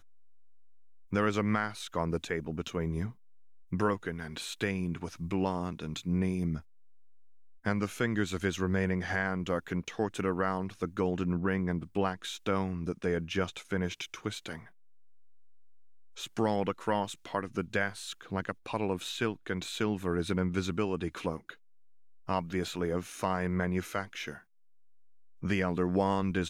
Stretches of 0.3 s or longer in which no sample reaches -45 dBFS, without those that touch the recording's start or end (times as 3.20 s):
3.12–3.72 s
6.61–7.65 s
14.68–16.17 s
21.54–22.28 s
24.39–25.43 s